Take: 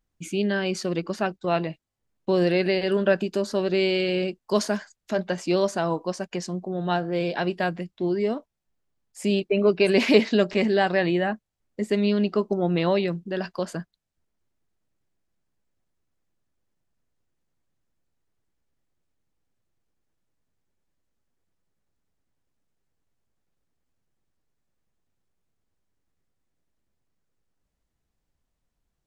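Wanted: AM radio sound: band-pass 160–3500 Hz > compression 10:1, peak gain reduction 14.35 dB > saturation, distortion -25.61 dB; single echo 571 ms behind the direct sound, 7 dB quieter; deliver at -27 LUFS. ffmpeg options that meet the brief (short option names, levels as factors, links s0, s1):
-af "highpass=160,lowpass=3500,aecho=1:1:571:0.447,acompressor=threshold=0.0562:ratio=10,asoftclip=threshold=0.141,volume=1.68"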